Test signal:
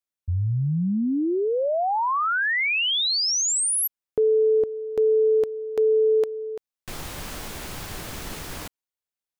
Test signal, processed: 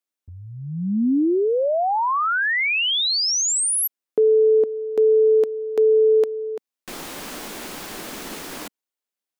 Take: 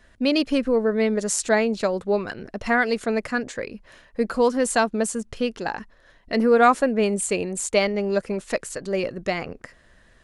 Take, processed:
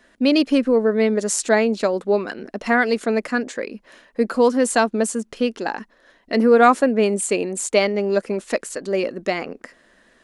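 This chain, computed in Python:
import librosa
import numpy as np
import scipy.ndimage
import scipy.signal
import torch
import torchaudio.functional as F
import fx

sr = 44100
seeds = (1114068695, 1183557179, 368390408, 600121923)

y = fx.low_shelf_res(x, sr, hz=160.0, db=-14.0, q=1.5)
y = y * librosa.db_to_amplitude(2.0)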